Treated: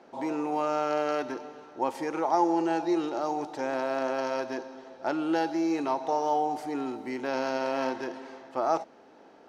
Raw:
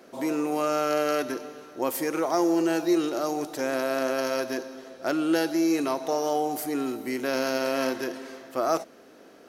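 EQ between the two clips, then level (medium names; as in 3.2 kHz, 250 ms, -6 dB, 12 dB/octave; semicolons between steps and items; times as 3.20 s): distance through air 100 m; peaking EQ 860 Hz +15 dB 0.27 oct; -4.0 dB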